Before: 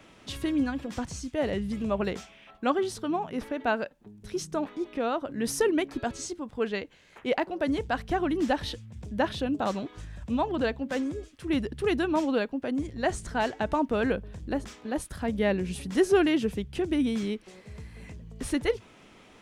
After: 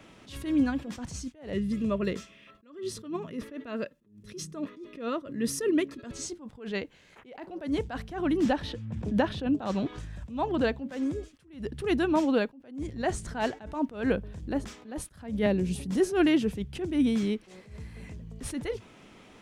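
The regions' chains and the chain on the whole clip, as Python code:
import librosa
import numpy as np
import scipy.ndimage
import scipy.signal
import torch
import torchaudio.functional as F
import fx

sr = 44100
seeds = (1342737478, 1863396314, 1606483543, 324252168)

y = fx.chain(x, sr, fx.peak_eq(hz=830.0, db=-14.5, octaves=0.36),
    fx.notch_comb(f0_hz=760.0), at=(1.53, 6.12))
y = fx.chain(y, sr, fx.lowpass(hz=3900.0, slope=6),
    fx.notch(hz=2100.0, q=27.0),
    fx.band_squash(depth_pct=100), at=(8.45, 9.99))
y = fx.chain(y, sr, fx.peak_eq(hz=1700.0, db=-7.0, octaves=1.9),
    fx.band_squash(depth_pct=40), at=(15.46, 16.0))
y = fx.peak_eq(y, sr, hz=170.0, db=3.0, octaves=2.2)
y = fx.attack_slew(y, sr, db_per_s=130.0)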